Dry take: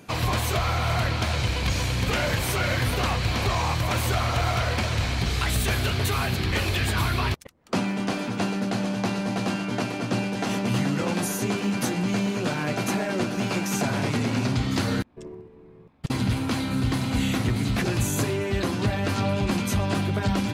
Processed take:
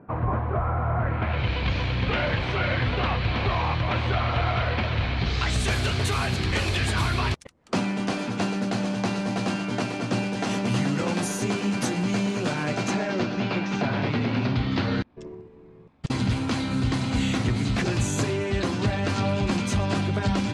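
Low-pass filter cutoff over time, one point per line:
low-pass filter 24 dB per octave
0:00.97 1,400 Hz
0:01.52 3,700 Hz
0:05.15 3,700 Hz
0:05.69 9,700 Hz
0:12.61 9,700 Hz
0:13.54 4,200 Hz
0:14.91 4,200 Hz
0:15.37 8,500 Hz

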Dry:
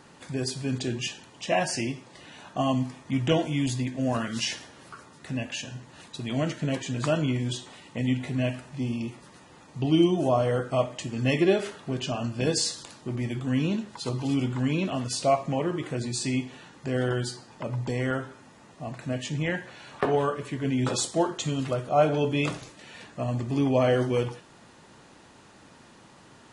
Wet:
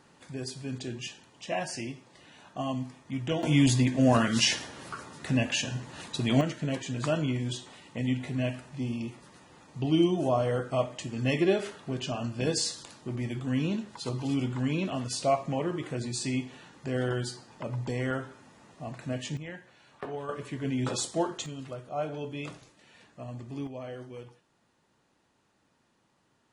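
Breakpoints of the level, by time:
−7 dB
from 0:03.43 +5 dB
from 0:06.41 −3 dB
from 0:19.37 −13 dB
from 0:20.29 −4 dB
from 0:21.46 −11.5 dB
from 0:23.67 −18 dB

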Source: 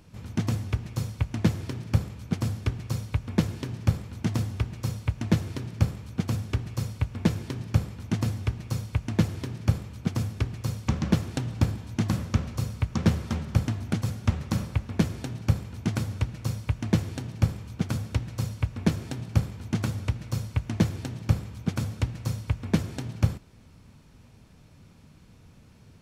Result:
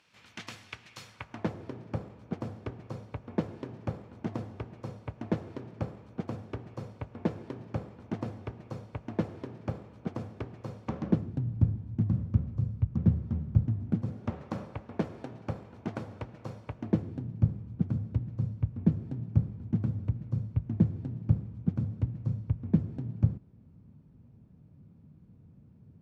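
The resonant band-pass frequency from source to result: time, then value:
resonant band-pass, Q 0.91
0:01.01 2,600 Hz
0:01.55 540 Hz
0:10.99 540 Hz
0:11.39 120 Hz
0:13.72 120 Hz
0:14.39 600 Hz
0:16.69 600 Hz
0:17.28 160 Hz

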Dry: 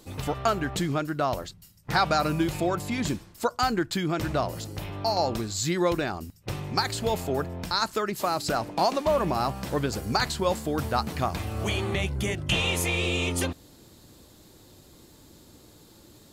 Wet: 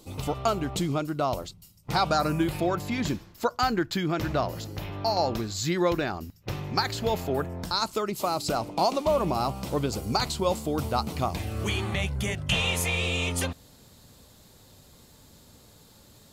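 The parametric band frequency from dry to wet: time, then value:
parametric band −12 dB 0.38 octaves
0:02.05 1,700 Hz
0:02.64 8,900 Hz
0:07.25 8,900 Hz
0:07.77 1,700 Hz
0:11.26 1,700 Hz
0:12.00 330 Hz

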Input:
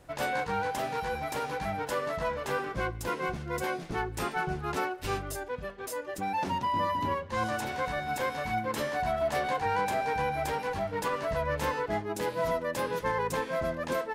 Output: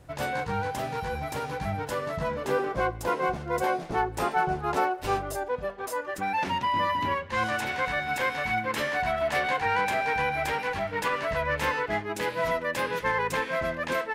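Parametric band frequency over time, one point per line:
parametric band +9 dB 1.6 octaves
0:02.09 97 Hz
0:02.78 710 Hz
0:05.70 710 Hz
0:06.43 2,200 Hz

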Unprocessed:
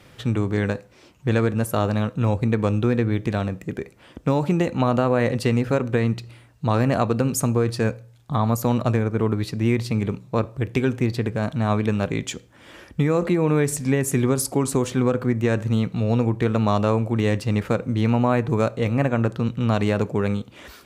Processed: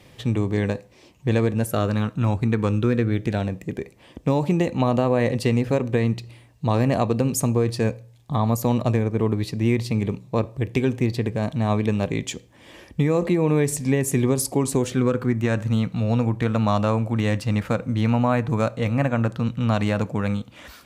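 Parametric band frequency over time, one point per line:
parametric band −13.5 dB 0.25 octaves
0:01.55 1,400 Hz
0:02.21 440 Hz
0:03.58 1,400 Hz
0:14.70 1,400 Hz
0:15.52 390 Hz

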